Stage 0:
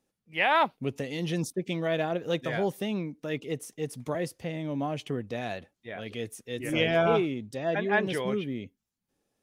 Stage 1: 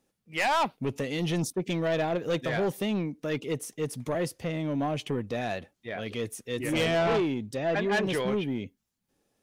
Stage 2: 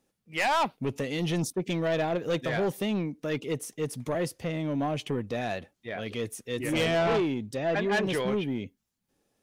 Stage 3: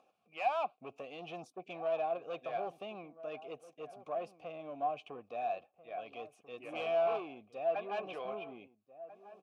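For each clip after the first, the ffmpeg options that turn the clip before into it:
-af "asoftclip=type=tanh:threshold=0.0531,volume=1.58"
-af anull
-filter_complex "[0:a]acompressor=mode=upward:threshold=0.00708:ratio=2.5,asplit=3[s0][s1][s2];[s0]bandpass=f=730:t=q:w=8,volume=1[s3];[s1]bandpass=f=1090:t=q:w=8,volume=0.501[s4];[s2]bandpass=f=2440:t=q:w=8,volume=0.355[s5];[s3][s4][s5]amix=inputs=3:normalize=0,asplit=2[s6][s7];[s7]adelay=1341,volume=0.178,highshelf=f=4000:g=-30.2[s8];[s6][s8]amix=inputs=2:normalize=0,volume=1.12"

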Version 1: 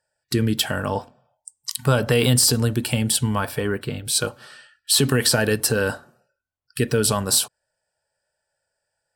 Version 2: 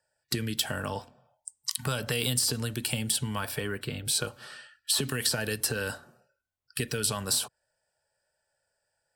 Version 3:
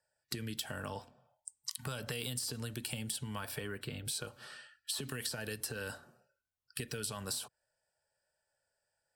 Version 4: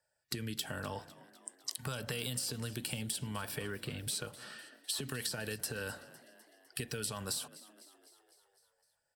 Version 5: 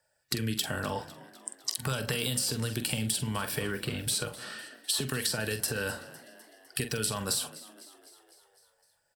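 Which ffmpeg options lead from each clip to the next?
-filter_complex "[0:a]acrossover=split=97|1700|3500[s0][s1][s2][s3];[s0]acompressor=threshold=0.00708:ratio=4[s4];[s1]acompressor=threshold=0.0251:ratio=4[s5];[s2]acompressor=threshold=0.0158:ratio=4[s6];[s3]acompressor=threshold=0.0501:ratio=4[s7];[s4][s5][s6][s7]amix=inputs=4:normalize=0,volume=0.891"
-af "acompressor=threshold=0.0251:ratio=3,volume=0.562"
-filter_complex "[0:a]asplit=7[s0][s1][s2][s3][s4][s5][s6];[s1]adelay=253,afreqshift=59,volume=0.119[s7];[s2]adelay=506,afreqshift=118,volume=0.0733[s8];[s3]adelay=759,afreqshift=177,volume=0.0457[s9];[s4]adelay=1012,afreqshift=236,volume=0.0282[s10];[s5]adelay=1265,afreqshift=295,volume=0.0176[s11];[s6]adelay=1518,afreqshift=354,volume=0.0108[s12];[s0][s7][s8][s9][s10][s11][s12]amix=inputs=7:normalize=0,volume=1.12"
-filter_complex "[0:a]asplit=2[s0][s1];[s1]adelay=45,volume=0.316[s2];[s0][s2]amix=inputs=2:normalize=0,volume=2.24"

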